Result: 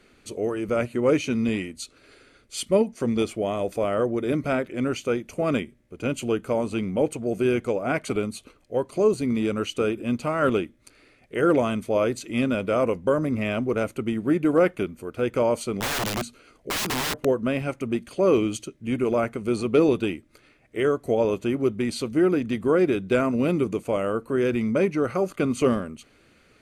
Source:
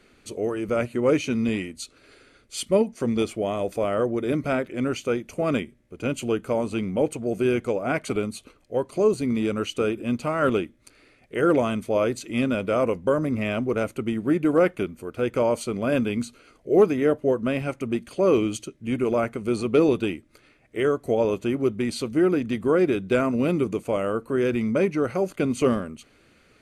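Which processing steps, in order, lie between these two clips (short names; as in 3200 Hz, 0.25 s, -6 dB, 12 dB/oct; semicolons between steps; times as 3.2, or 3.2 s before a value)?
15.8–17.25 wrapped overs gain 22 dB; 25.06–25.61 bell 1200 Hz +9.5 dB 0.23 oct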